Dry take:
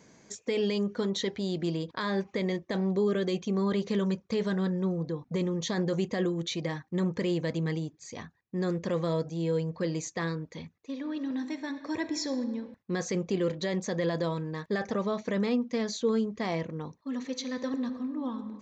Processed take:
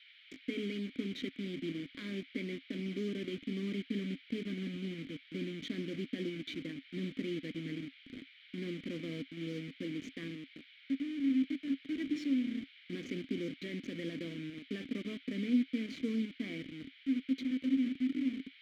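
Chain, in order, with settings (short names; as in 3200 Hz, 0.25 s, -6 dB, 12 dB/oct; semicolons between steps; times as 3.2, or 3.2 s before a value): level-crossing sampler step -30.5 dBFS; band noise 1300–4100 Hz -53 dBFS; vowel filter i; gain +5.5 dB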